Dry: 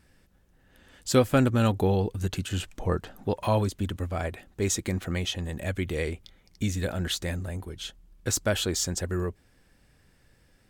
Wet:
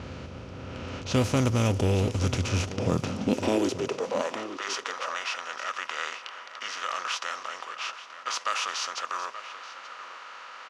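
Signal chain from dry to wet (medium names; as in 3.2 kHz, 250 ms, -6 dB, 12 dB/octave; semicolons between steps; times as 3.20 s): spectral levelling over time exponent 0.4; high-pass sweep 75 Hz -> 1.4 kHz, 2.56–4.60 s; formant shift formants -3 st; on a send: delay 879 ms -13 dB; on the sum: level-controlled noise filter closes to 2.8 kHz, open at -12.5 dBFS; trim -6.5 dB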